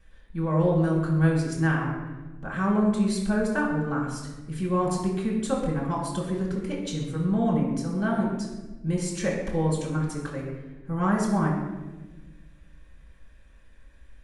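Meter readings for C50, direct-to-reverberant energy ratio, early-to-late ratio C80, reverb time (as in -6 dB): 2.5 dB, -5.0 dB, 4.5 dB, 1.2 s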